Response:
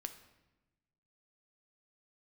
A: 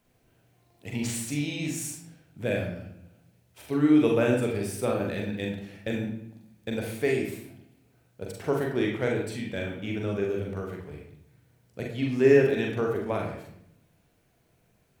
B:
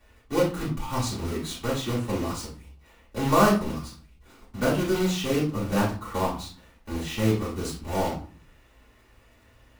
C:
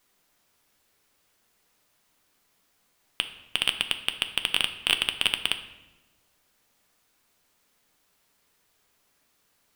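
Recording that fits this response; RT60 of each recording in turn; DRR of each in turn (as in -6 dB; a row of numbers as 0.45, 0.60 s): C; 0.70, 0.45, 1.1 s; -0.5, -11.0, 7.5 dB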